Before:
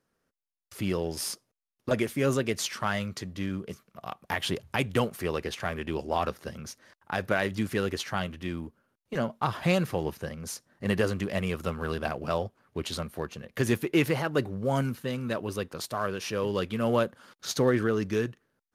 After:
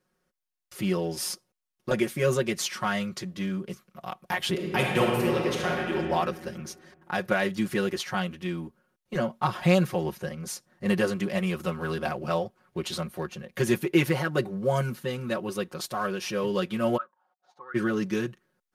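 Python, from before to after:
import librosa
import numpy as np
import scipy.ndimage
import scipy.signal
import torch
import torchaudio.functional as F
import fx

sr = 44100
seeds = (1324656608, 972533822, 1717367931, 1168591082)

y = fx.reverb_throw(x, sr, start_s=4.51, length_s=1.42, rt60_s=2.0, drr_db=-1.5)
y = fx.auto_wah(y, sr, base_hz=670.0, top_hz=1400.0, q=14.0, full_db=-18.5, direction='up', at=(16.96, 17.74), fade=0.02)
y = y + 0.89 * np.pad(y, (int(5.5 * sr / 1000.0), 0))[:len(y)]
y = y * librosa.db_to_amplitude(-1.0)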